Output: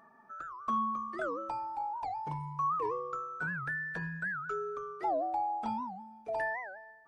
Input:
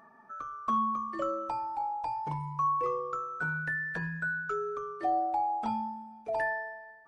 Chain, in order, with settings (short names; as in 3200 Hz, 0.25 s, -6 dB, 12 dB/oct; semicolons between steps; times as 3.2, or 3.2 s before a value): record warp 78 rpm, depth 250 cents; gain -3 dB